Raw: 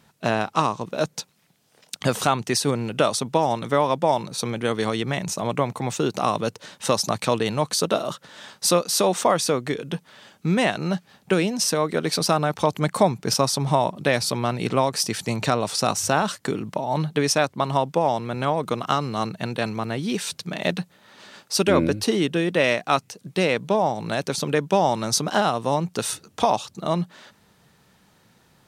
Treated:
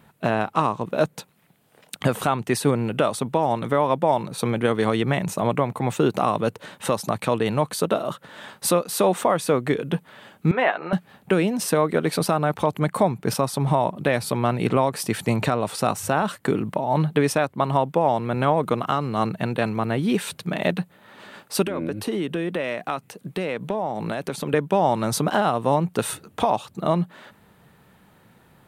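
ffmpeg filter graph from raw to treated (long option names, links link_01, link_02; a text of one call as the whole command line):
ffmpeg -i in.wav -filter_complex "[0:a]asettb=1/sr,asplit=3[link_01][link_02][link_03];[link_01]atrim=end=10.514[link_04];[link_02]atrim=start=10.51:end=10.93,asetpts=PTS-STARTPTS,afade=type=in:duration=0.004:curve=qsin,afade=type=out:start_time=0.416:duration=0.004:curve=qsin,highpass=600,lowpass=2200,asplit=2[link_05][link_06];[link_06]adelay=12,volume=-7dB[link_07];[link_05][link_07]amix=inputs=2:normalize=0,atrim=end_sample=18522[link_08];[link_03]atrim=start=10.926[link_09];[link_04][link_08]acrossfade=duration=0.004:curve1=hsin:curve2=qsin[link_10];[link_10][link_09]acrossfade=duration=0.004:curve1=qsin:curve2=hsin,asettb=1/sr,asplit=3[link_11][link_12][link_13];[link_11]atrim=end=21.674[link_14];[link_12]atrim=start=21.67:end=24.54,asetpts=PTS-STARTPTS,afade=type=in:duration=0.004:curve=qsin,afade=type=out:start_time=2.866:duration=0.004:curve=qsin,highpass=120,acompressor=threshold=-27dB:ratio=4:attack=3.2:release=140:knee=1:detection=peak[link_15];[link_13]atrim=start=24.536[link_16];[link_14][link_15]acrossfade=duration=0.004:curve1=hsin:curve2=qsin[link_17];[link_17][link_16]acrossfade=duration=0.004:curve1=qsin:curve2=hsin,equalizer=frequency=5600:width=1.1:gain=-14,alimiter=limit=-12dB:level=0:latency=1:release=410,volume=4.5dB" out.wav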